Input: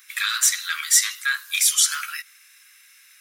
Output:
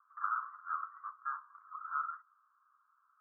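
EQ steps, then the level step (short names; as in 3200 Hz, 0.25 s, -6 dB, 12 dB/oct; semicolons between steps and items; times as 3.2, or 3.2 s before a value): HPF 1000 Hz 12 dB/oct; steep low-pass 1300 Hz 96 dB/oct; +5.0 dB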